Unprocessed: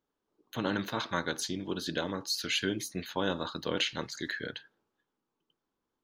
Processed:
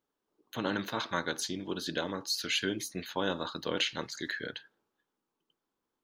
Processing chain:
low-shelf EQ 160 Hz −5.5 dB

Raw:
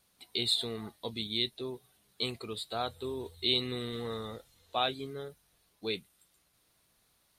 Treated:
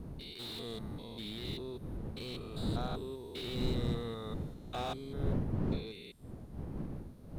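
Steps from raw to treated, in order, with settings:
spectrum averaged block by block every 200 ms
wind on the microphone 200 Hz −37 dBFS
slew-rate limiting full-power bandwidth 33 Hz
level −2.5 dB

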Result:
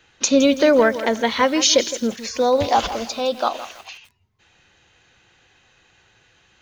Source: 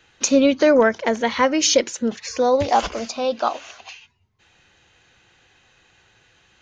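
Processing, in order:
dynamic equaliser 3,700 Hz, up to +6 dB, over −45 dBFS, Q 2.7
feedback echo at a low word length 164 ms, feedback 35%, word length 6 bits, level −13 dB

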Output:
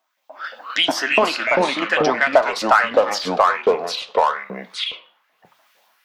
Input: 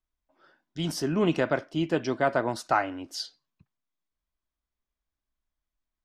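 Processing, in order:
noise gate −58 dBFS, range −7 dB
graphic EQ with 15 bands 250 Hz +12 dB, 630 Hz +6 dB, 10,000 Hz −9 dB
automatic gain control gain up to 14 dB
auto-filter high-pass saw up 3.4 Hz 660–3,800 Hz
in parallel at −4.5 dB: soft clipping −17 dBFS, distortion −4 dB
on the sum: square-wave tremolo 0.55 Hz, depth 60%, duty 75%
flanger 0.61 Hz, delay 4.1 ms, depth 7.7 ms, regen −84%
delay with pitch and tempo change per echo 170 ms, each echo −3 semitones, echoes 2
multiband upward and downward compressor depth 70%
level +4 dB

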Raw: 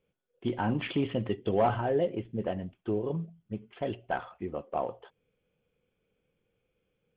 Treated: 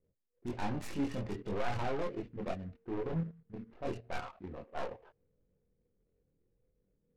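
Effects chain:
stylus tracing distortion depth 0.35 ms
low-shelf EQ 80 Hz +6 dB
notch filter 3,200 Hz, Q 6.9
hum removal 229.8 Hz, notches 2
low-pass that shuts in the quiet parts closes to 440 Hz, open at −26.5 dBFS
output level in coarse steps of 16 dB
transient designer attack −7 dB, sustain +1 dB
soft clipping −34.5 dBFS, distortion −11 dB
multi-voice chorus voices 4, 0.37 Hz, delay 23 ms, depth 2.5 ms
short delay modulated by noise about 1,300 Hz, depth 0.03 ms
level +6.5 dB

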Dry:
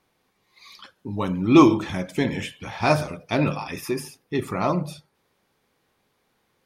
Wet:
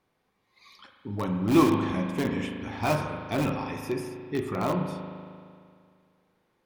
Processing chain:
high-shelf EQ 2,800 Hz −6.5 dB
in parallel at −10 dB: wrap-around overflow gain 15 dB
on the sum: convolution reverb RT60 2.2 s, pre-delay 38 ms, DRR 4 dB
level −6.5 dB

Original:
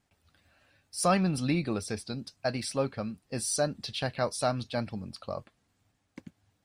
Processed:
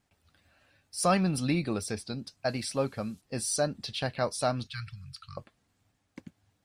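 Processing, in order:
0:01.08–0:01.91: high-shelf EQ 10,000 Hz +8 dB
0:02.48–0:03.20: noise in a band 3,100–12,000 Hz −66 dBFS
0:04.67–0:05.37: Chebyshev band-stop filter 150–1,300 Hz, order 4

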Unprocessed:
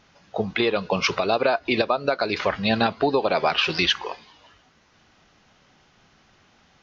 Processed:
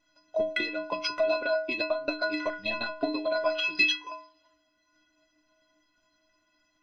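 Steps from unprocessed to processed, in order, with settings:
transient designer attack +12 dB, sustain −1 dB
stiff-string resonator 300 Hz, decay 0.53 s, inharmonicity 0.03
hum removal 410.3 Hz, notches 6
level +5.5 dB

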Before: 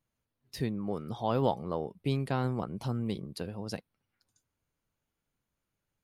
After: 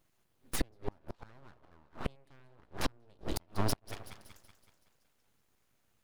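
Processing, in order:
echo with a time of its own for lows and highs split 600 Hz, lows 90 ms, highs 188 ms, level −11 dB
gate with flip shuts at −27 dBFS, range −38 dB
full-wave rectification
level +11 dB

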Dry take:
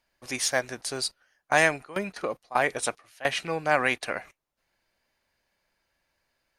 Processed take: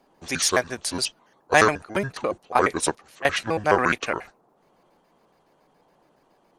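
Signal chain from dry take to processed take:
pitch shifter gated in a rhythm −7 semitones, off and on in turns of 70 ms
noise in a band 140–1,000 Hz −68 dBFS
level +5 dB

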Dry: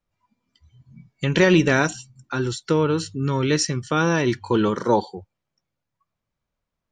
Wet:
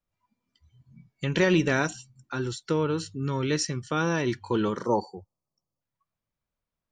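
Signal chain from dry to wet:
time-frequency box erased 0:04.86–0:05.81, 1,300–4,300 Hz
level −6 dB

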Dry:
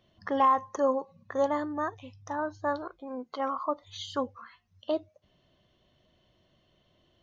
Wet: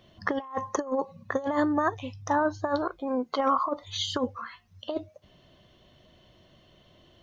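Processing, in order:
compressor whose output falls as the input rises −31 dBFS, ratio −0.5
level +5.5 dB

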